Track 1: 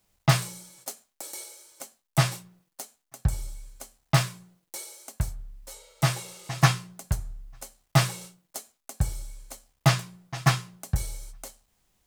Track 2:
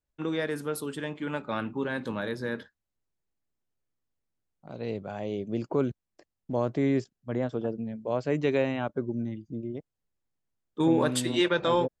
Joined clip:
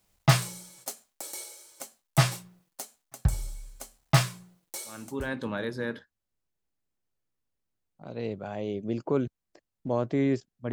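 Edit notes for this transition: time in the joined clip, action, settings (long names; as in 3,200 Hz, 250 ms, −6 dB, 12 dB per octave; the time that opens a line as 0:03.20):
track 1
0:05.08: continue with track 2 from 0:01.72, crossfade 0.50 s linear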